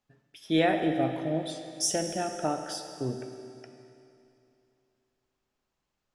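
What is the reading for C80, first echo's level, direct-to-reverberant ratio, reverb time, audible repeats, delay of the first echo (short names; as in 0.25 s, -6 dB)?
7.5 dB, none, 6.0 dB, 2.8 s, none, none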